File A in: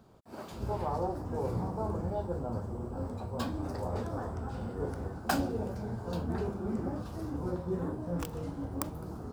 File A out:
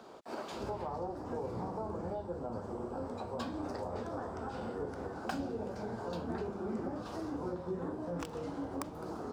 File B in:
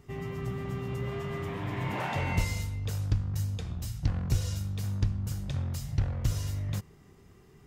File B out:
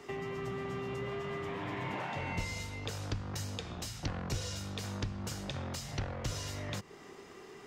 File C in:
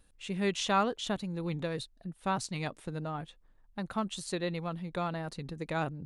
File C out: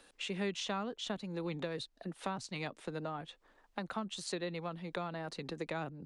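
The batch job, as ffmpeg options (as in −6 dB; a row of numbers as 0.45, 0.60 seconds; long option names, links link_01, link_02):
-filter_complex "[0:a]acrossover=split=280 7800:gain=0.0708 1 0.224[link_01][link_02][link_03];[link_01][link_02][link_03]amix=inputs=3:normalize=0,acrossover=split=180[link_04][link_05];[link_05]acompressor=threshold=-51dB:ratio=5[link_06];[link_04][link_06]amix=inputs=2:normalize=0,volume=11.5dB"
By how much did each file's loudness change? −4.0, −6.0, −5.5 LU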